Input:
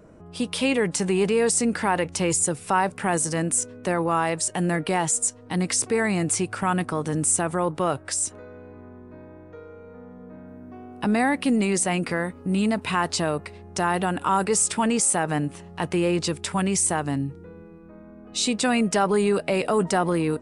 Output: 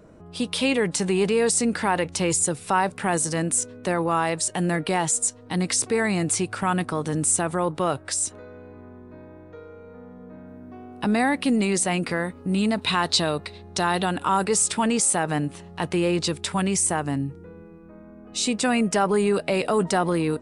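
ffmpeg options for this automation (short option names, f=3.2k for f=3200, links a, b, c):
-af "asetnsamples=n=441:p=0,asendcmd='12.78 equalizer g 13.5;14.17 equalizer g 4.5;16.74 equalizer g -2;19.34 equalizer g 4',equalizer=f=3.9k:t=o:w=0.52:g=4.5"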